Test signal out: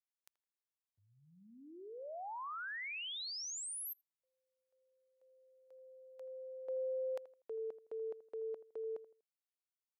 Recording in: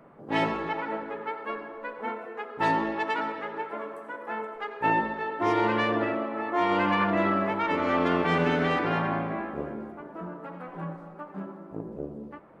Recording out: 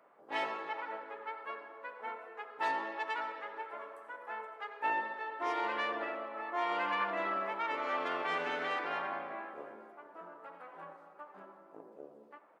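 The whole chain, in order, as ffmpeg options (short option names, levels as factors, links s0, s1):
-filter_complex "[0:a]highpass=580,asplit=2[s0][s1];[s1]adelay=81,lowpass=f=1400:p=1,volume=0.178,asplit=2[s2][s3];[s3]adelay=81,lowpass=f=1400:p=1,volume=0.34,asplit=2[s4][s5];[s5]adelay=81,lowpass=f=1400:p=1,volume=0.34[s6];[s0][s2][s4][s6]amix=inputs=4:normalize=0,volume=0.447"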